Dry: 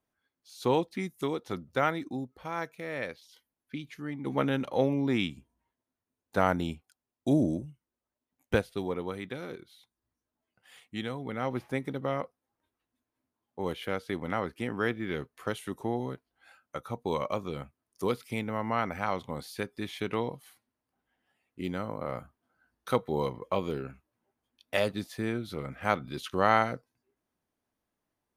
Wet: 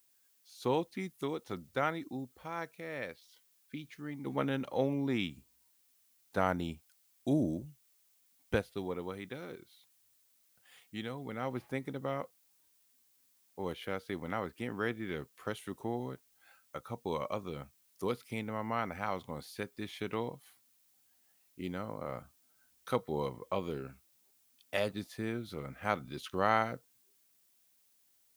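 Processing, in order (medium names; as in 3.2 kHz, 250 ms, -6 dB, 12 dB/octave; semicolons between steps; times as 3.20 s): added noise blue -65 dBFS; trim -5 dB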